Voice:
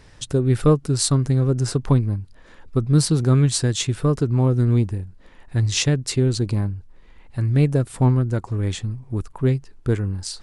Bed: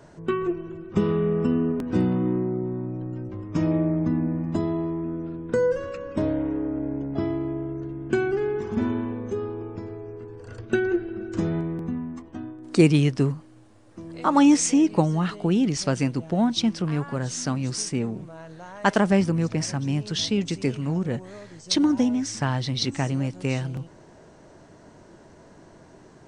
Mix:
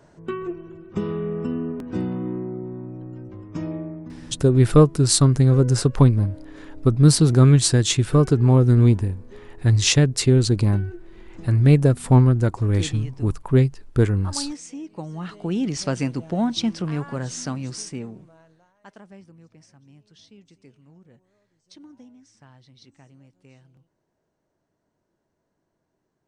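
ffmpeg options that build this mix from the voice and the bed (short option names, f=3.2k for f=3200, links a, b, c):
-filter_complex "[0:a]adelay=4100,volume=3dB[a];[1:a]volume=12dB,afade=t=out:st=3.42:d=0.73:silence=0.237137,afade=t=in:st=14.94:d=0.87:silence=0.158489,afade=t=out:st=17.21:d=1.53:silence=0.0530884[b];[a][b]amix=inputs=2:normalize=0"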